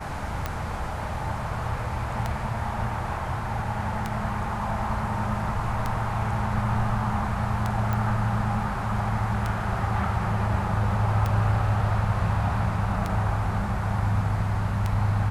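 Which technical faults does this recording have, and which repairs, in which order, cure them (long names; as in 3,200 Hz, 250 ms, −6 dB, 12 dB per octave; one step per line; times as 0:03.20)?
scratch tick 33 1/3 rpm −13 dBFS
0:07.93: click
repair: click removal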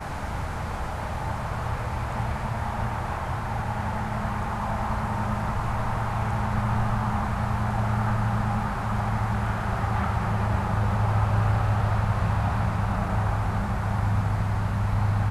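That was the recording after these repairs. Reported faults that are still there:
none of them is left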